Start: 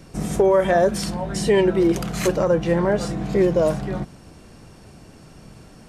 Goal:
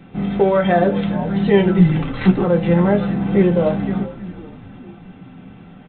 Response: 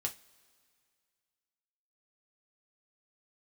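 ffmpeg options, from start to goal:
-filter_complex "[0:a]asplit=2[link_01][link_02];[link_02]acrusher=bits=3:mode=log:mix=0:aa=0.000001,volume=-9.5dB[link_03];[link_01][link_03]amix=inputs=2:normalize=0,asplit=3[link_04][link_05][link_06];[link_04]afade=type=out:start_time=1.78:duration=0.02[link_07];[link_05]afreqshift=-180,afade=type=in:start_time=1.78:duration=0.02,afade=type=out:start_time=2.43:duration=0.02[link_08];[link_06]afade=type=in:start_time=2.43:duration=0.02[link_09];[link_07][link_08][link_09]amix=inputs=3:normalize=0,bandreject=frequency=53.31:width_type=h:width=4,bandreject=frequency=106.62:width_type=h:width=4,bandreject=frequency=159.93:width_type=h:width=4,bandreject=frequency=213.24:width_type=h:width=4,bandreject=frequency=266.55:width_type=h:width=4,bandreject=frequency=319.86:width_type=h:width=4,bandreject=frequency=373.17:width_type=h:width=4,bandreject=frequency=426.48:width_type=h:width=4,bandreject=frequency=479.79:width_type=h:width=4,bandreject=frequency=533.1:width_type=h:width=4,bandreject=frequency=586.41:width_type=h:width=4,asplit=6[link_10][link_11][link_12][link_13][link_14][link_15];[link_11]adelay=410,afreqshift=-91,volume=-15.5dB[link_16];[link_12]adelay=820,afreqshift=-182,volume=-20.5dB[link_17];[link_13]adelay=1230,afreqshift=-273,volume=-25.6dB[link_18];[link_14]adelay=1640,afreqshift=-364,volume=-30.6dB[link_19];[link_15]adelay=2050,afreqshift=-455,volume=-35.6dB[link_20];[link_10][link_16][link_17][link_18][link_19][link_20]amix=inputs=6:normalize=0[link_21];[1:a]atrim=start_sample=2205,asetrate=79380,aresample=44100[link_22];[link_21][link_22]afir=irnorm=-1:irlink=0,aresample=8000,aresample=44100,volume=4.5dB"

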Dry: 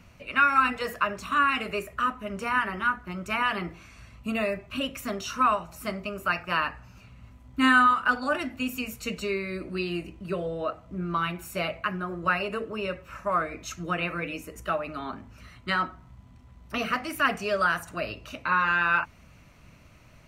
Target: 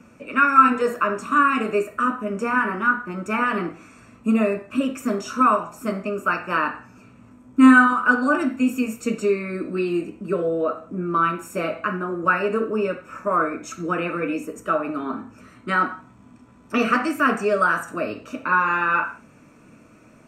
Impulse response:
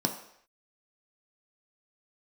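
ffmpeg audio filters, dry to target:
-filter_complex "[0:a]asettb=1/sr,asplit=3[link_01][link_02][link_03];[link_01]atrim=end=15.814[link_04];[link_02]atrim=start=15.81:end=17.09,asetpts=PTS-STARTPTS,afade=type=in:duration=0.004:curve=qsin,afade=type=out:start_time=1.276:duration=0.004:curve=qsin,equalizer=frequency=3000:width=0.37:gain=5.5[link_05];[link_03]atrim=start=17.086[link_06];[link_04][link_05]acrossfade=duration=0.004:curve1=hsin:curve2=qsin[link_07];[link_07][link_06]acrossfade=duration=0.004:curve1=qsin:curve2=hsin[link_08];[1:a]atrim=start_sample=2205,afade=type=out:start_time=0.35:duration=0.01,atrim=end_sample=15876,asetrate=66150,aresample=44100[link_09];[link_08][link_09]afir=irnorm=-1:irlink=0,volume=-2dB"

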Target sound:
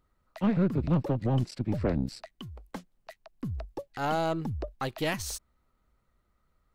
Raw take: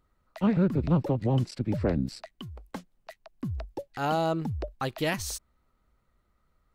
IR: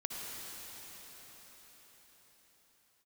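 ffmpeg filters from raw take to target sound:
-af "acontrast=81,aeval=exprs='0.447*(cos(1*acos(clip(val(0)/0.447,-1,1)))-cos(1*PI/2))+0.0251*(cos(6*acos(clip(val(0)/0.447,-1,1)))-cos(6*PI/2))':channel_layout=same,volume=-8.5dB"

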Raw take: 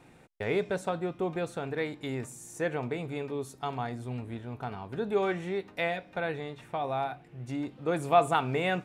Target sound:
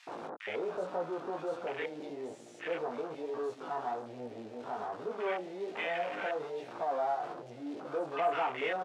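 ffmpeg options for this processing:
ffmpeg -i in.wav -filter_complex "[0:a]aeval=exprs='val(0)+0.5*0.0531*sgn(val(0))':channel_layout=same,acrossover=split=4800[link_01][link_02];[link_02]acompressor=threshold=-38dB:ratio=4:attack=1:release=60[link_03];[link_01][link_03]amix=inputs=2:normalize=0,flanger=delay=16.5:depth=4:speed=1.2,asoftclip=type=tanh:threshold=-21.5dB,acrossover=split=1300[link_04][link_05];[link_04]adelay=70[link_06];[link_06][link_05]amix=inputs=2:normalize=0,afwtdn=0.0158,highpass=510,lowpass=6400" out.wav

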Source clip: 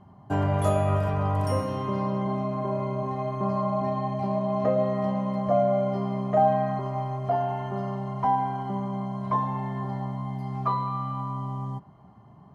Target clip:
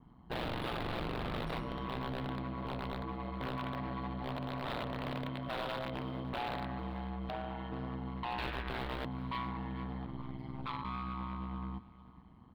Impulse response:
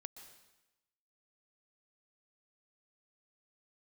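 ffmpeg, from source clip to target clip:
-filter_complex "[0:a]asettb=1/sr,asplit=3[link_01][link_02][link_03];[link_01]atrim=end=5.284[link_04];[link_02]atrim=start=5.28:end=6.24,asetpts=PTS-STARTPTS,afade=type=in:duration=0.004:curve=qsin,afade=type=out:start_time=0.956:duration=0.004:curve=qsin,aecho=1:1:3.2:0.5,atrim=end_sample=42336[link_05];[link_03]atrim=start=6.236[link_06];[link_04][link_05]acrossfade=duration=0.004:curve1=hsin:curve2=qsin[link_07];[link_07][link_06]acrossfade=duration=0.004:curve1=qsin:curve2=hsin,asettb=1/sr,asplit=3[link_08][link_09][link_10];[link_08]atrim=end=8.384[link_11];[link_09]atrim=start=8.38:end=9.05,asetpts=PTS-STARTPTS,afade=type=in:duration=0.004:curve=qsin,afade=type=out:start_time=0.666:duration=0.004:curve=qsin,aeval=exprs='0.133*(cos(1*acos(clip(val(0)/0.133,-1,1)))-cos(1*PI/2))+0.0473*(cos(6*acos(clip(val(0)/0.133,-1,1)))-cos(6*PI/2))+0.00422*(cos(7*acos(clip(val(0)/0.133,-1,1)))-cos(7*PI/2))':channel_layout=same[link_12];[link_10]atrim=start=9.046[link_13];[link_11][link_12]acrossfade=duration=0.004:curve1=hsin:curve2=qsin[link_14];[link_14][link_13]acrossfade=duration=0.004:curve1=qsin:curve2=hsin,acrossover=split=530|3900[link_15][link_16][link_17];[link_15]aeval=exprs='(mod(14.1*val(0)+1,2)-1)/14.1':channel_layout=same[link_18];[link_16]highpass=870[link_19];[link_18][link_19][link_17]amix=inputs=3:normalize=0,asplit=3[link_20][link_21][link_22];[link_20]afade=type=out:start_time=10.05:duration=0.02[link_23];[link_21]aeval=exprs='val(0)*sin(2*PI*71*n/s)':channel_layout=same,afade=type=in:start_time=10.05:duration=0.02,afade=type=out:start_time=10.83:duration=0.02[link_24];[link_22]afade=type=in:start_time=10.83:duration=0.02[link_25];[link_23][link_24][link_25]amix=inputs=3:normalize=0,asoftclip=type=hard:threshold=-29dB,highshelf=frequency=4900:width_type=q:width=3:gain=-9.5,aecho=1:1:441|882|1323:0.126|0.0378|0.0113,aeval=exprs='val(0)*sin(2*PI*61*n/s)':channel_layout=same,adynamicequalizer=threshold=0.00316:dfrequency=3300:dqfactor=0.7:tfrequency=3300:tqfactor=0.7:attack=5:release=100:ratio=0.375:range=1.5:mode=cutabove:tftype=highshelf,volume=-4dB"

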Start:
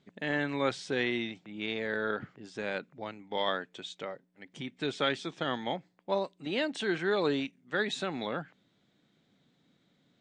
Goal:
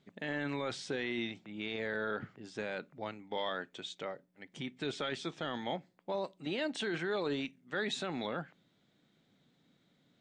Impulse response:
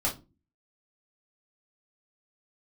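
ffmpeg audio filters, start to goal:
-filter_complex "[0:a]alimiter=level_in=1dB:limit=-24dB:level=0:latency=1:release=11,volume=-1dB,asplit=2[link_01][link_02];[1:a]atrim=start_sample=2205[link_03];[link_02][link_03]afir=irnorm=-1:irlink=0,volume=-26.5dB[link_04];[link_01][link_04]amix=inputs=2:normalize=0,volume=-1.5dB"

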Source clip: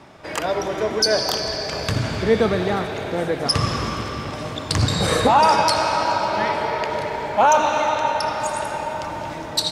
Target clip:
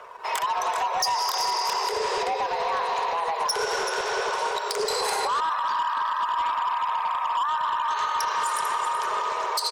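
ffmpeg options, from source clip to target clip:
ffmpeg -i in.wav -filter_complex "[0:a]equalizer=frequency=690:width_type=o:width=0.36:gain=12.5,acompressor=threshold=-17dB:ratio=5,aecho=1:1:382:0.299,acompressor=mode=upward:threshold=-44dB:ratio=2.5,asettb=1/sr,asplit=3[link_01][link_02][link_03];[link_01]atrim=end=5.404[link_04];[link_02]atrim=start=5.4:end=7.91,asetpts=PTS-STARTPTS,afade=type=in:duration=0.004:curve=qsin,afade=type=out:start_time=2.506:duration=0.004:curve=qsin,highpass=410,equalizer=frequency=480:width_type=q:width=4:gain=-8,equalizer=frequency=690:width_type=q:width=4:gain=5,equalizer=frequency=1000:width_type=q:width=4:gain=-5,equalizer=frequency=1800:width_type=q:width=4:gain=-7,equalizer=frequency=2700:width_type=q:width=4:gain=-9,lowpass=frequency=3000:width=0.5412,lowpass=frequency=3000:width=1.3066[link_05];[link_03]atrim=start=7.906[link_06];[link_04][link_05]acrossfade=duration=0.004:curve1=hsin:curve2=qsin[link_07];[link_07][link_06]acrossfade=duration=0.004:curve1=qsin:curve2=hsin,afreqshift=320,alimiter=limit=-16dB:level=0:latency=1:release=126,volume=21dB,asoftclip=hard,volume=-21dB,crystalizer=i=1:c=0,afftfilt=real='re*gte(hypot(re,im),0.00562)':imag='im*gte(hypot(re,im),0.00562)':win_size=1024:overlap=0.75,aeval=exprs='sgn(val(0))*max(abs(val(0))-0.00168,0)':channel_layout=same" out.wav

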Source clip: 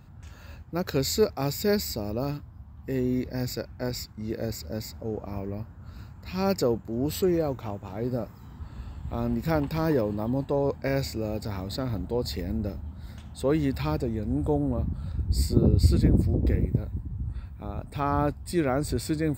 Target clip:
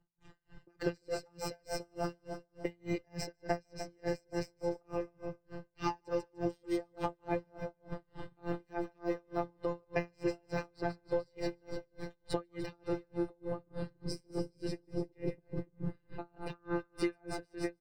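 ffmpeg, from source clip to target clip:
ffmpeg -i in.wav -filter_complex "[0:a]aecho=1:1:2.7:0.94,asetrate=48000,aresample=44100,afftfilt=real='hypot(re,im)*cos(PI*b)':imag='0':win_size=1024:overlap=0.75,acompressor=threshold=-35dB:ratio=4,agate=range=-33dB:threshold=-39dB:ratio=3:detection=peak,aemphasis=mode=reproduction:type=75fm,aecho=1:1:149|298|447|596|745|894|1043:0.316|0.183|0.106|0.0617|0.0358|0.0208|0.012,acrossover=split=140|940[link_01][link_02][link_03];[link_01]acompressor=threshold=-53dB:ratio=4[link_04];[link_02]acompressor=threshold=-44dB:ratio=4[link_05];[link_03]acompressor=threshold=-50dB:ratio=4[link_06];[link_04][link_05][link_06]amix=inputs=3:normalize=0,aeval=exprs='val(0)*pow(10,-38*(0.5-0.5*cos(2*PI*3.4*n/s))/20)':channel_layout=same,volume=13dB" out.wav

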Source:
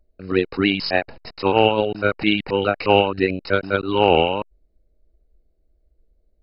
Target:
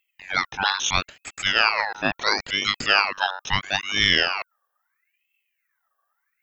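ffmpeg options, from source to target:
ffmpeg -i in.wav -af "aemphasis=mode=production:type=bsi,aeval=exprs='val(0)*sin(2*PI*1900*n/s+1900*0.4/0.75*sin(2*PI*0.75*n/s))':channel_layout=same" out.wav

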